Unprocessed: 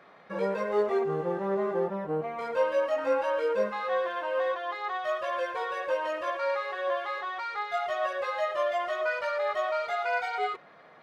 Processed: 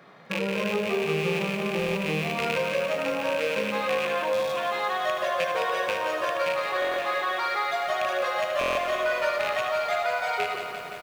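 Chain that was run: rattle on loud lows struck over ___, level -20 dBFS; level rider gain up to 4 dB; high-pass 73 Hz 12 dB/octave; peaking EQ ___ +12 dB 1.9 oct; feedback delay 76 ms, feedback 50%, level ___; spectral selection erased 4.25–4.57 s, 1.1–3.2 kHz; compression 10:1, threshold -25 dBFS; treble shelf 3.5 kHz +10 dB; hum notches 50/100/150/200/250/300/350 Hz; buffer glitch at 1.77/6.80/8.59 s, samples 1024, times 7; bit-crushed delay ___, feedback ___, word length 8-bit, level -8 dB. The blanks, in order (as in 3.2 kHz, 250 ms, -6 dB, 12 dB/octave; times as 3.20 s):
-45 dBFS, 150 Hz, -9 dB, 173 ms, 80%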